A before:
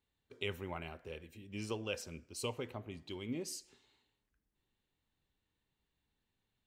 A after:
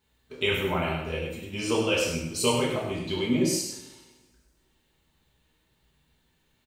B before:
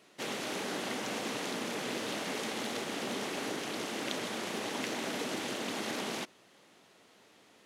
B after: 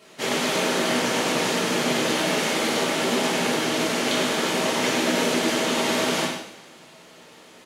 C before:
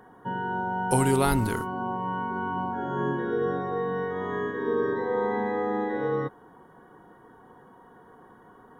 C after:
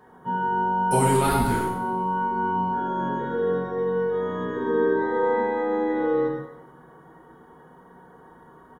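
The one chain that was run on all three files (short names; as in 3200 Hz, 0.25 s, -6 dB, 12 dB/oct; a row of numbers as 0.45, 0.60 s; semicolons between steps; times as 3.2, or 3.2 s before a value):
outdoor echo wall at 17 m, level -7 dB; two-slope reverb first 0.62 s, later 1.7 s, from -18 dB, DRR -5 dB; normalise peaks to -9 dBFS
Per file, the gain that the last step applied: +9.0, +6.5, -4.0 dB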